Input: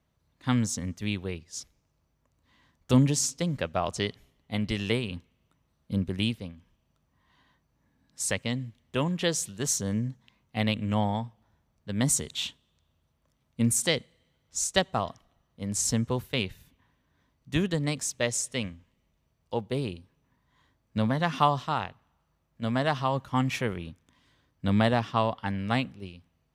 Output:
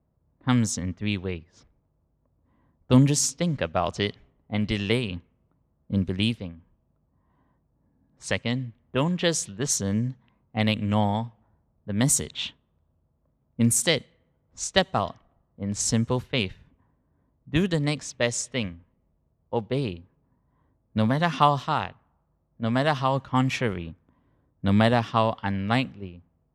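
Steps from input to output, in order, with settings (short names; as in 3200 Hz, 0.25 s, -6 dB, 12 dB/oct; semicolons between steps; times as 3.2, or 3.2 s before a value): low-pass opened by the level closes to 740 Hz, open at -22.5 dBFS; gain +3.5 dB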